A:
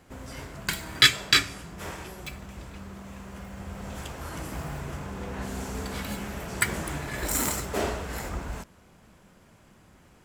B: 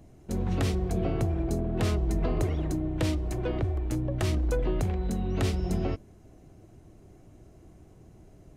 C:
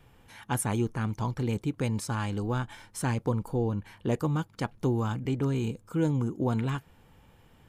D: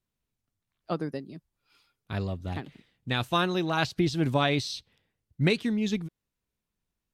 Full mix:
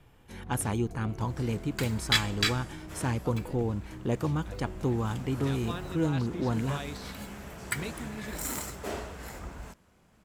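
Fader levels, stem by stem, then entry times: -7.5 dB, -15.0 dB, -1.5 dB, -14.0 dB; 1.10 s, 0.00 s, 0.00 s, 2.35 s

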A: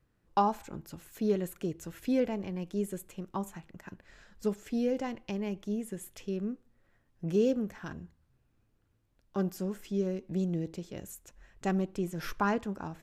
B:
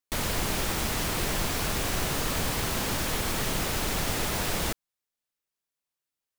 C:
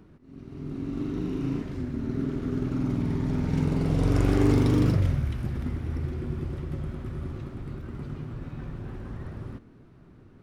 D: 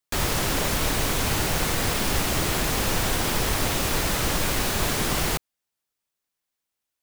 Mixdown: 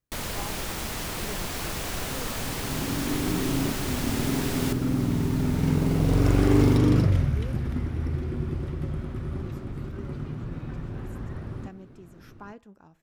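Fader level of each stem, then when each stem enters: -15.0 dB, -3.5 dB, +2.0 dB, -17.5 dB; 0.00 s, 0.00 s, 2.10 s, 1.40 s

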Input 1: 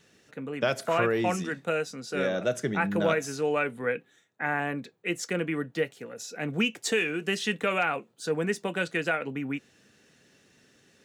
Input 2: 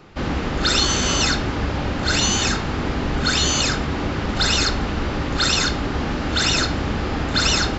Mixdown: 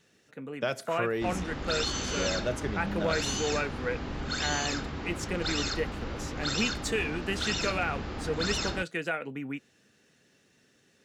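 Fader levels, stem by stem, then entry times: -4.0 dB, -13.0 dB; 0.00 s, 1.05 s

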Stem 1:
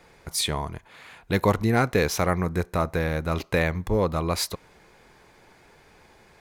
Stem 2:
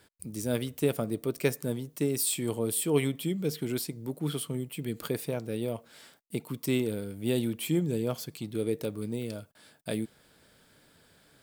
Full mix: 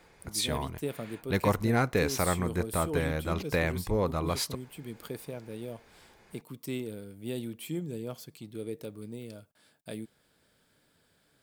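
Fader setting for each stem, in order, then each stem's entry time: -5.0 dB, -7.5 dB; 0.00 s, 0.00 s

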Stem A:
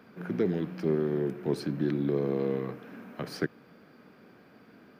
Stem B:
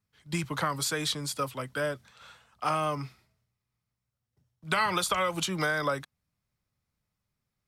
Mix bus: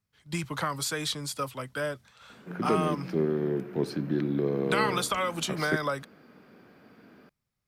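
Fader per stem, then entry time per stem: +0.5 dB, -1.0 dB; 2.30 s, 0.00 s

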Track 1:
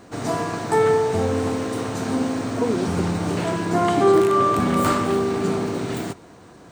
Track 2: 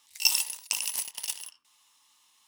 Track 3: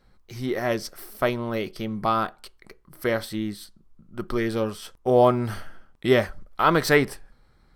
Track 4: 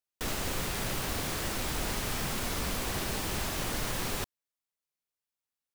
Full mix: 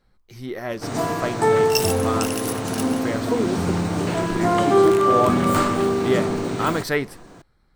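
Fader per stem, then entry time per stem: +0.5 dB, -0.5 dB, -4.0 dB, -16.0 dB; 0.70 s, 1.50 s, 0.00 s, 1.85 s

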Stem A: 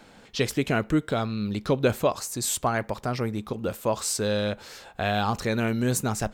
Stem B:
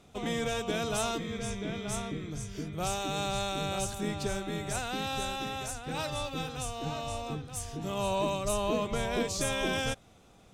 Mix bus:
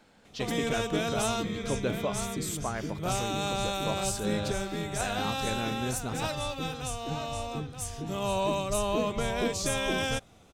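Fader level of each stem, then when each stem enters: -9.0 dB, +1.5 dB; 0.00 s, 0.25 s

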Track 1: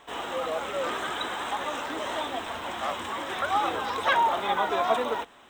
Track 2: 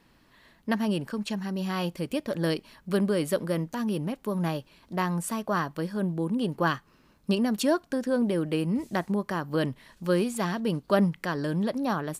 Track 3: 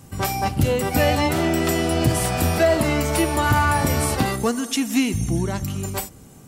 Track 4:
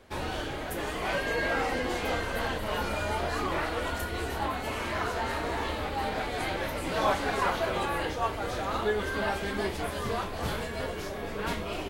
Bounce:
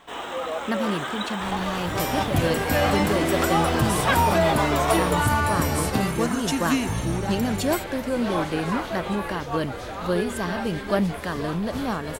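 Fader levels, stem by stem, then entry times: +1.0 dB, 0.0 dB, -4.0 dB, -1.5 dB; 0.00 s, 0.00 s, 1.75 s, 1.30 s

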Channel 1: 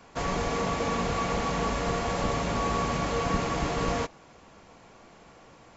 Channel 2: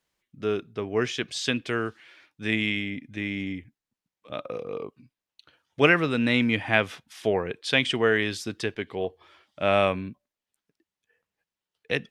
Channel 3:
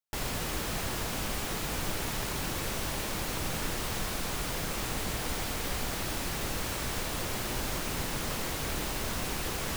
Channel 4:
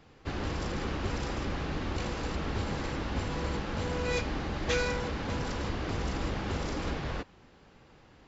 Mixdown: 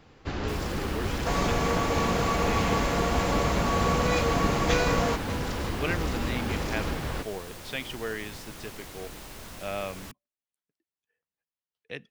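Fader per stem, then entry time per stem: +1.5 dB, -12.0 dB, -9.5 dB, +2.5 dB; 1.10 s, 0.00 s, 0.35 s, 0.00 s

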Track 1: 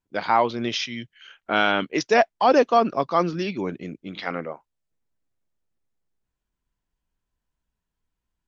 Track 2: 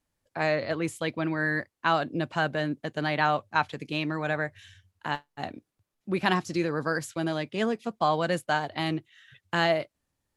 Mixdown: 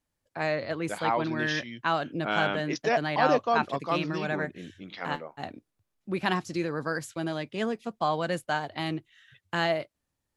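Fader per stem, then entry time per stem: -8.0 dB, -2.5 dB; 0.75 s, 0.00 s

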